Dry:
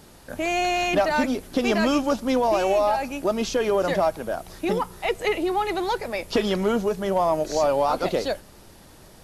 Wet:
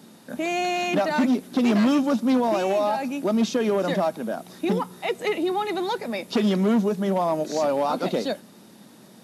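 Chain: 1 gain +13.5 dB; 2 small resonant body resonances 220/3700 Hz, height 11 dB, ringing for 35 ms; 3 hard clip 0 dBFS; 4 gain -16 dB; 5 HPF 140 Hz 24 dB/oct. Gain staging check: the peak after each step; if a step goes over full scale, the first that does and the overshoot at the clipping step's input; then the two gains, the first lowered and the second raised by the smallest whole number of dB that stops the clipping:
+4.0, +9.5, 0.0, -16.0, -10.5 dBFS; step 1, 9.5 dB; step 1 +3.5 dB, step 4 -6 dB

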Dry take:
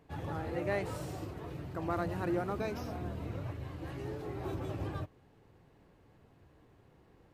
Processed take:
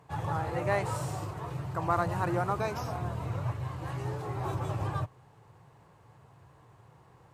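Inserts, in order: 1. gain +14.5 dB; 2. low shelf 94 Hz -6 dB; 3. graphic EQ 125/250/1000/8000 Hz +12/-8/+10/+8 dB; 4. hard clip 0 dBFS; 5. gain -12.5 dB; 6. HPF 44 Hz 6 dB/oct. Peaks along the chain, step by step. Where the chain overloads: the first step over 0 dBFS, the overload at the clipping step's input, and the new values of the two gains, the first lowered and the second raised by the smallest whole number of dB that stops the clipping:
-6.5, -6.5, -2.5, -2.5, -15.0, -15.5 dBFS; no overload

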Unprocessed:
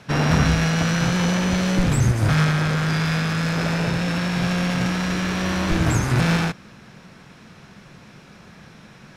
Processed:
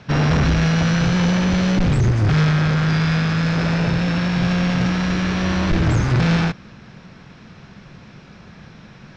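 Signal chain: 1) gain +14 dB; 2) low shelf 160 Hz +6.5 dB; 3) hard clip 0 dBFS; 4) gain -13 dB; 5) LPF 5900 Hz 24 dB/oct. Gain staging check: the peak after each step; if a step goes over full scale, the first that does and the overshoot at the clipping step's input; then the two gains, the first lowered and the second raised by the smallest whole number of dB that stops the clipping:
+6.5, +10.0, 0.0, -13.0, -11.5 dBFS; step 1, 10.0 dB; step 1 +4 dB, step 4 -3 dB

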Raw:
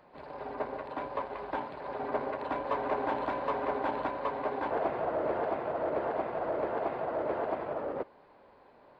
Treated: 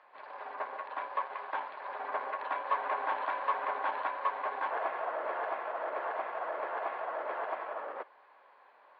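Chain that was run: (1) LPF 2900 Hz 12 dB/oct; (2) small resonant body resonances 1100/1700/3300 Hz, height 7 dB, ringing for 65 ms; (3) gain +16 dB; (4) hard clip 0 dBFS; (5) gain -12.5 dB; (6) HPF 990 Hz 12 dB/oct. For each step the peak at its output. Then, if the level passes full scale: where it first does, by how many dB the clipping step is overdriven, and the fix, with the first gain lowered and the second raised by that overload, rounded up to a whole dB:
-19.0, -18.5, -2.5, -2.5, -15.0, -18.5 dBFS; no overload

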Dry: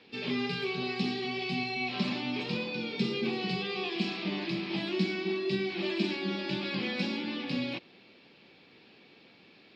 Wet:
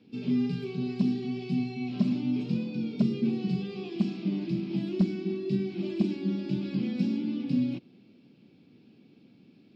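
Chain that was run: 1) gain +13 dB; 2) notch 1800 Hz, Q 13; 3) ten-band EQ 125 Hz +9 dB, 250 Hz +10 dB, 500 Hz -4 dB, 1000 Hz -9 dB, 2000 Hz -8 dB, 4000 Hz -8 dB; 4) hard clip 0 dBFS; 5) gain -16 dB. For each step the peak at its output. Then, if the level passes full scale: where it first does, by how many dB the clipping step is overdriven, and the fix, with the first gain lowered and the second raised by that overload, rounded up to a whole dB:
-3.5, -4.0, +4.0, 0.0, -16.0 dBFS; step 3, 4.0 dB; step 1 +9 dB, step 5 -12 dB

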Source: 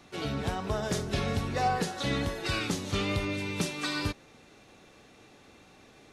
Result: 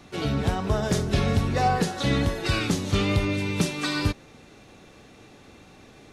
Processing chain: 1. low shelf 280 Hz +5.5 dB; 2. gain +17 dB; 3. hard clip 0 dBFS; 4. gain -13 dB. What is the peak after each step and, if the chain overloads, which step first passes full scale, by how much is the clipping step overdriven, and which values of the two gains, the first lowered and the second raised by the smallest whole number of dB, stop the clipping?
-14.0, +3.0, 0.0, -13.0 dBFS; step 2, 3.0 dB; step 2 +14 dB, step 4 -10 dB

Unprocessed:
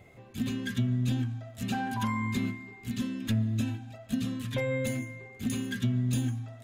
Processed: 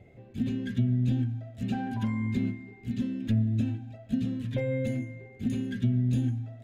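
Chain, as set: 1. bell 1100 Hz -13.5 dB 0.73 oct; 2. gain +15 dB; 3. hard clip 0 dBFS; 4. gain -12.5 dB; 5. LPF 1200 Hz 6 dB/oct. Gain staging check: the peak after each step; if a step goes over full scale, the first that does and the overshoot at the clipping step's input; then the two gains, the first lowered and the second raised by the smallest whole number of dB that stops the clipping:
-18.5, -3.5, -3.5, -16.0, -16.5 dBFS; no overload

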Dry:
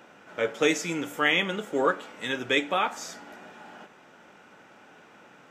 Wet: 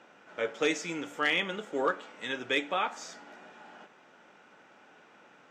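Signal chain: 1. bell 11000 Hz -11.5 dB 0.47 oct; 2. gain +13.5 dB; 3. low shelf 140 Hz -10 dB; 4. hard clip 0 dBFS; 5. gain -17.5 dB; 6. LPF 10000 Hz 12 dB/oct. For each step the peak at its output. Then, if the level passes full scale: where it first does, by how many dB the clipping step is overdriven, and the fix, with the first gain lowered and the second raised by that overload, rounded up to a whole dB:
-8.5, +5.0, +4.5, 0.0, -17.5, -17.0 dBFS; step 2, 4.5 dB; step 2 +8.5 dB, step 5 -12.5 dB

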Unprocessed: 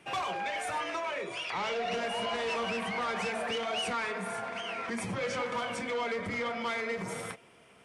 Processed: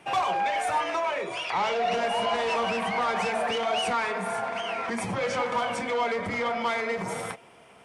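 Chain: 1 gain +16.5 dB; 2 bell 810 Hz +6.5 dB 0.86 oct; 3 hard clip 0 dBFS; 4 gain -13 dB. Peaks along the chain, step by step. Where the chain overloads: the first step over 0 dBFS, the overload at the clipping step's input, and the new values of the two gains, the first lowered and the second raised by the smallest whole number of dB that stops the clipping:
-8.5, -3.5, -3.5, -16.5 dBFS; no overload

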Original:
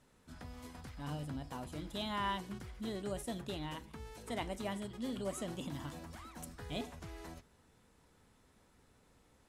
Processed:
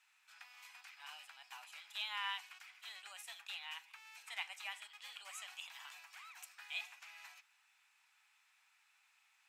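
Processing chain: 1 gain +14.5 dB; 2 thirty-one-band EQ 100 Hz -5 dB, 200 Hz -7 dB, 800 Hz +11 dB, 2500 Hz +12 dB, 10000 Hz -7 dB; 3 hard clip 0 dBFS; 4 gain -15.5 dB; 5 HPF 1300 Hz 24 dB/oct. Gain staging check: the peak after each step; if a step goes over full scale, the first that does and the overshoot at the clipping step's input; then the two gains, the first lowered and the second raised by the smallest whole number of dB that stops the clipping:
-10.0, -5.5, -5.5, -21.0, -26.0 dBFS; no overload

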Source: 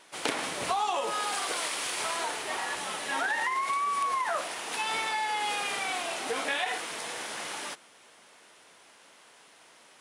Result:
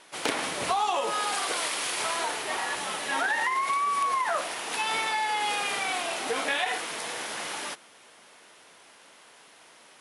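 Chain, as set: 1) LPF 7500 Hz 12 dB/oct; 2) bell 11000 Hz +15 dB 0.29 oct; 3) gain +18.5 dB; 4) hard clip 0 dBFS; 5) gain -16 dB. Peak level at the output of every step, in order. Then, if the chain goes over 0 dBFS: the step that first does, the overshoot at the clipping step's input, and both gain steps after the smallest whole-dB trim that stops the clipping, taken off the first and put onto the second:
-14.0, -14.0, +4.5, 0.0, -16.0 dBFS; step 3, 4.5 dB; step 3 +13.5 dB, step 5 -11 dB

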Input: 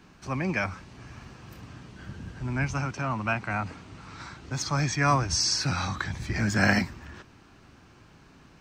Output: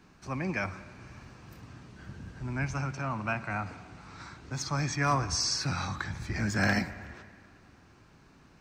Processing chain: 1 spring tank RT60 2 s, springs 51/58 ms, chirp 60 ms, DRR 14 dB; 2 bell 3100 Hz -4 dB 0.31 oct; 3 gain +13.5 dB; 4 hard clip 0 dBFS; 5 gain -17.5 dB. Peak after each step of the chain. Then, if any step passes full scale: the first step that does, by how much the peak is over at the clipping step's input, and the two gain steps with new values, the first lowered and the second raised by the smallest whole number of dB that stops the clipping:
-7.5, -7.5, +6.0, 0.0, -17.5 dBFS; step 3, 6.0 dB; step 3 +7.5 dB, step 5 -11.5 dB

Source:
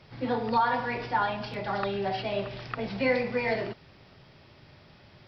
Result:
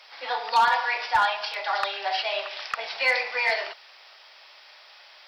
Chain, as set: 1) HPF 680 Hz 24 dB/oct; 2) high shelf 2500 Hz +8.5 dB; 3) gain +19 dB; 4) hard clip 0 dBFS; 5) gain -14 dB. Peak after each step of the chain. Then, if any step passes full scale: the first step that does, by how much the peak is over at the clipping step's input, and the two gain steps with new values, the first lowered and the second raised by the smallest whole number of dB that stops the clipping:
-15.0, -14.0, +5.0, 0.0, -14.0 dBFS; step 3, 5.0 dB; step 3 +14 dB, step 5 -9 dB

